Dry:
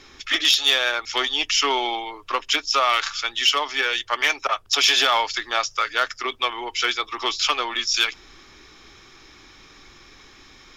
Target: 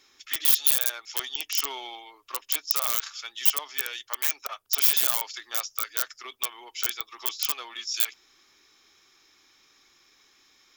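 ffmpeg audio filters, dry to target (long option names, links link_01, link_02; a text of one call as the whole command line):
ffmpeg -i in.wav -af "aeval=exprs='(mod(3.16*val(0)+1,2)-1)/3.16':channel_layout=same,aemphasis=mode=production:type=bsi,volume=-15dB" out.wav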